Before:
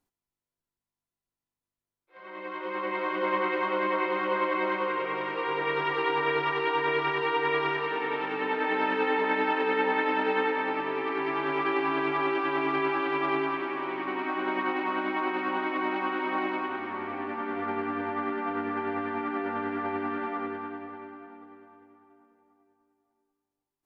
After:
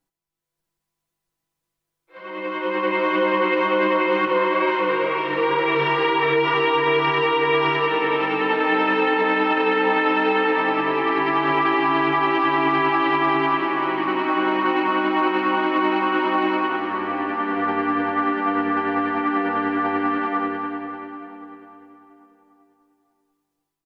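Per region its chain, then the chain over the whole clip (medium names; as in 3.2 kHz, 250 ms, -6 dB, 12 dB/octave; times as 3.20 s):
4.25–6.54 s: chorus 2.1 Hz, delay 18 ms, depth 3.6 ms + doubling 43 ms -2 dB
whole clip: comb 6.1 ms, depth 66%; level rider gain up to 8.5 dB; peak limiter -10.5 dBFS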